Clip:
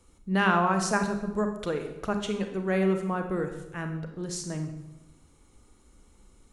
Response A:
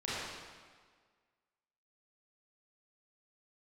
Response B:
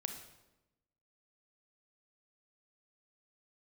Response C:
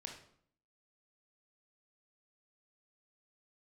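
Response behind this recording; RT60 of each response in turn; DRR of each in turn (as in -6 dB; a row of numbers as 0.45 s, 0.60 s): B; 1.6 s, 1.0 s, 0.60 s; -10.0 dB, 5.5 dB, 1.0 dB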